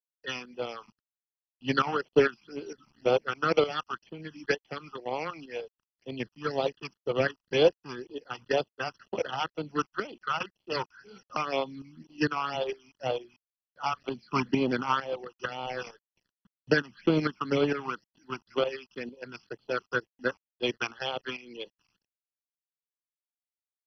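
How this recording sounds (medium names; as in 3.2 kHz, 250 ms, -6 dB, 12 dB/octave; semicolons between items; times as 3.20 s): a quantiser's noise floor 10-bit, dither none; phasing stages 8, 2 Hz, lowest notch 500–1700 Hz; tremolo saw up 2.2 Hz, depth 70%; MP2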